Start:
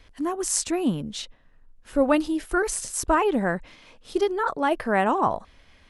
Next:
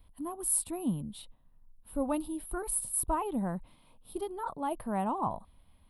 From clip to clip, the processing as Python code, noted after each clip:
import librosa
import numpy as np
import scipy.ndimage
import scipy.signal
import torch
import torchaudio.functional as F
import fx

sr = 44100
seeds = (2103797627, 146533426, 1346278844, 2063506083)

y = fx.curve_eq(x, sr, hz=(190.0, 440.0, 970.0, 1700.0, 3800.0, 6400.0, 10000.0), db=(0, -11, -3, -19, -9, -25, 8))
y = F.gain(torch.from_numpy(y), -4.5).numpy()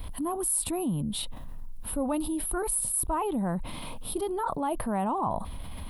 y = fx.env_flatten(x, sr, amount_pct=70)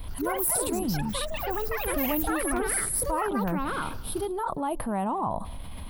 y = fx.echo_pitch(x, sr, ms=82, semitones=6, count=3, db_per_echo=-3.0)
y = y + 10.0 ** (-22.5 / 20.0) * np.pad(y, (int(184 * sr / 1000.0), 0))[:len(y)]